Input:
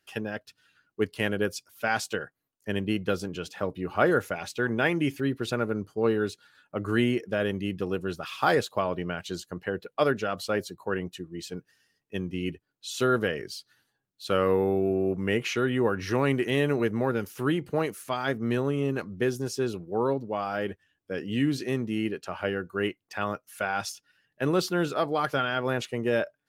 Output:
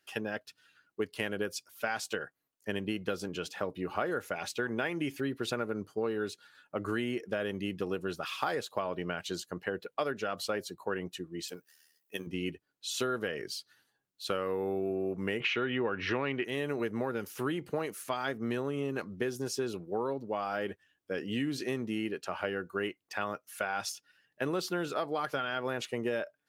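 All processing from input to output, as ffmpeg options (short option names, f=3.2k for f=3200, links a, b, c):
-filter_complex "[0:a]asettb=1/sr,asplit=3[a][b][c];[a]atrim=end=11.484[d];[b]atrim=start=11.48:end=12.27,asetpts=PTS-STARTPTS,afade=t=in:d=0.004:c=qsin,afade=t=out:st=0.786:d=0.004:c=qsin,tremolo=f=77:d=0.621,aemphasis=mode=production:type=bsi[e];[c]atrim=start=12.266[f];[d][e]acrossfade=d=0.004:c1=hsin:c2=qsin[g];[g][f]acrossfade=d=0.004:c1=qsin:c2=hsin,asettb=1/sr,asplit=3[h][i][j];[h]atrim=end=15.404[k];[i]atrim=start=15.4:end=16.45,asetpts=PTS-STARTPTS,afade=t=in:d=0.004:c=qsin,afade=t=out:st=1.046:d=0.004:c=qsin,acontrast=53,lowpass=f=2.9k:t=q:w=1.8[l];[j]atrim=start=16.446[m];[k][l]acrossfade=d=0.004:c1=hsin:c2=qsin[n];[n][m]acrossfade=d=0.004:c1=qsin:c2=hsin,lowshelf=f=150:g=-10,acompressor=threshold=-29dB:ratio=6"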